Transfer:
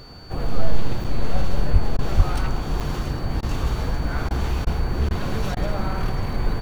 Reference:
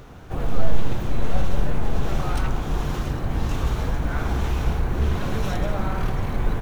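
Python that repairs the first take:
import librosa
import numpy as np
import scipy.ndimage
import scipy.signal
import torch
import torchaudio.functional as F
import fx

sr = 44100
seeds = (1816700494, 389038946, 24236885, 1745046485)

y = fx.notch(x, sr, hz=4500.0, q=30.0)
y = fx.highpass(y, sr, hz=140.0, slope=24, at=(1.72, 1.84), fade=0.02)
y = fx.highpass(y, sr, hz=140.0, slope=24, at=(2.16, 2.28), fade=0.02)
y = fx.fix_interpolate(y, sr, at_s=(1.04, 2.8), length_ms=6.1)
y = fx.fix_interpolate(y, sr, at_s=(1.97, 3.41, 4.29, 4.65, 5.09, 5.55), length_ms=16.0)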